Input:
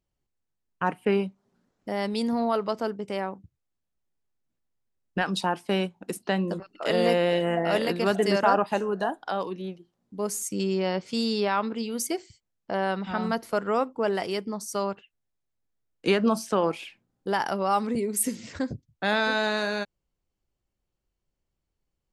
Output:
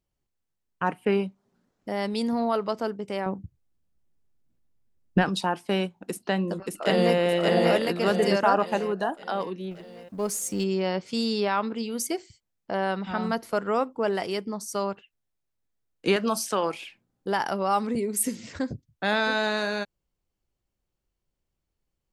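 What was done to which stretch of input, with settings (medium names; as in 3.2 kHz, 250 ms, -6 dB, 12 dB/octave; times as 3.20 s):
3.26–5.29 s: bass shelf 410 Hz +11.5 dB
6.05–7.18 s: echo throw 580 ms, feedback 45%, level -1 dB
9.71–10.64 s: companding laws mixed up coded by mu
16.16–16.74 s: tilt EQ +2.5 dB/octave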